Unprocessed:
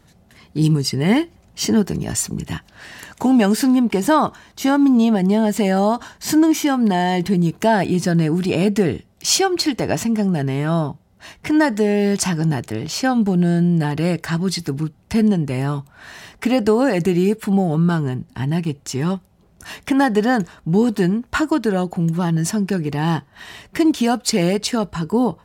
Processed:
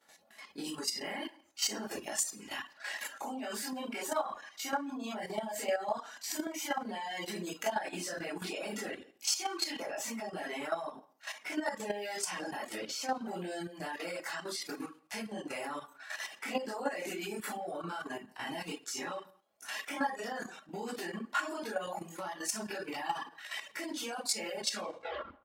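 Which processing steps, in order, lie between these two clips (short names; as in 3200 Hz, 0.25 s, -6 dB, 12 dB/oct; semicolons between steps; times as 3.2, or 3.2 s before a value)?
tape stop at the end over 0.80 s; limiter -10 dBFS, peak gain reduction 6 dB; HPF 520 Hz 12 dB/oct; comb 3.6 ms, depth 34%; reverb RT60 0.45 s, pre-delay 13 ms, DRR -9.5 dB; compressor 3:1, threshold -20 dBFS, peak gain reduction 10.5 dB; reverb removal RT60 0.85 s; level quantiser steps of 10 dB; speakerphone echo 0.17 s, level -26 dB; gain -9 dB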